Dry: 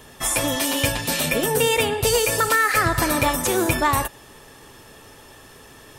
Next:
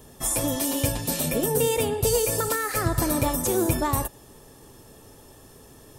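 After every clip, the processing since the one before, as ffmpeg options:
ffmpeg -i in.wav -af "equalizer=frequency=2100:width_type=o:width=2.5:gain=-12.5" out.wav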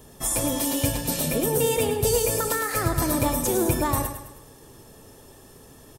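ffmpeg -i in.wav -af "aecho=1:1:105|210|315|420|525:0.355|0.16|0.0718|0.0323|0.0145" out.wav

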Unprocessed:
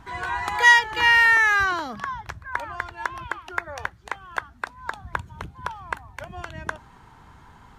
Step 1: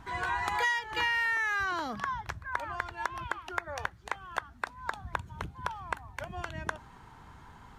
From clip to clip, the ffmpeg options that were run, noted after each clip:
ffmpeg -i in.wav -af "acompressor=threshold=-24dB:ratio=10,volume=-2.5dB" out.wav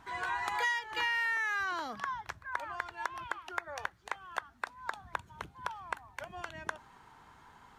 ffmpeg -i in.wav -af "lowshelf=frequency=210:gain=-12,volume=-2.5dB" out.wav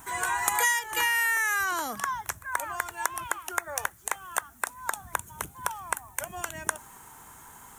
ffmpeg -i in.wav -af "aexciter=amount=15.1:drive=2.9:freq=6700,volume=6dB" out.wav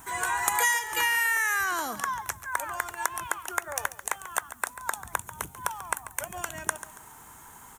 ffmpeg -i in.wav -af "aecho=1:1:140|280|420:0.2|0.0619|0.0192" out.wav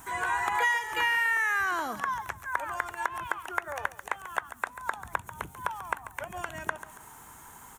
ffmpeg -i in.wav -filter_complex "[0:a]acrossover=split=3400[link_01][link_02];[link_02]acompressor=threshold=-47dB:ratio=4:attack=1:release=60[link_03];[link_01][link_03]amix=inputs=2:normalize=0" out.wav

